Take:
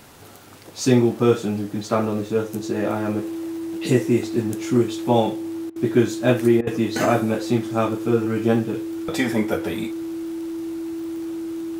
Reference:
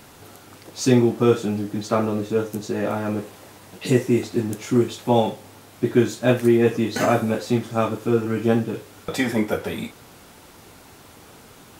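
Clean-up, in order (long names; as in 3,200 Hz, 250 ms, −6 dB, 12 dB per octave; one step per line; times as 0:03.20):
click removal
notch filter 330 Hz, Q 30
repair the gap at 0:05.70/0:06.61, 58 ms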